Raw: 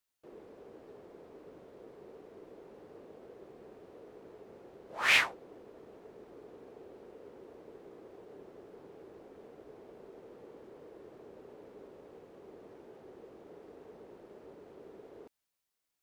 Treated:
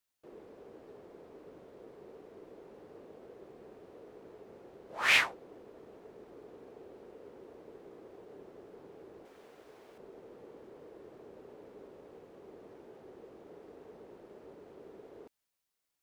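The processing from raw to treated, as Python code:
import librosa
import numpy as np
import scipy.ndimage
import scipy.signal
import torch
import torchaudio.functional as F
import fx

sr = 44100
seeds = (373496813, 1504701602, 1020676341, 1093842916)

y = fx.tilt_shelf(x, sr, db=-7.0, hz=830.0, at=(9.25, 9.98))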